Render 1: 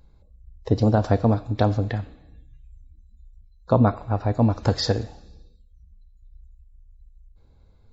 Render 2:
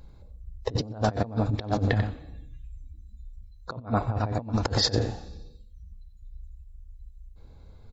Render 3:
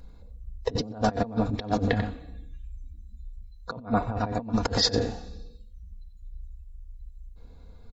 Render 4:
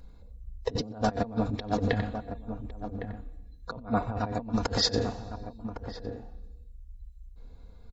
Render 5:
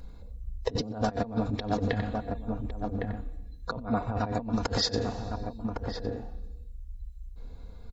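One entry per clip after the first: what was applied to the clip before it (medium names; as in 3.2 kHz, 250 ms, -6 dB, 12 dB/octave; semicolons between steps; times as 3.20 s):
delay 92 ms -10 dB; compressor with a negative ratio -26 dBFS, ratio -0.5
comb 4.2 ms, depth 47%
echo from a far wall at 190 m, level -9 dB; trim -2.5 dB
compression 3:1, threshold -31 dBFS, peak gain reduction 8.5 dB; trim +5 dB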